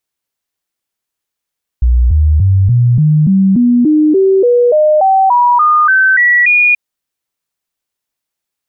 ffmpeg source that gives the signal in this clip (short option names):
-f lavfi -i "aevalsrc='0.531*clip(min(mod(t,0.29),0.29-mod(t,0.29))/0.005,0,1)*sin(2*PI*60.6*pow(2,floor(t/0.29)/3)*mod(t,0.29))':d=4.93:s=44100"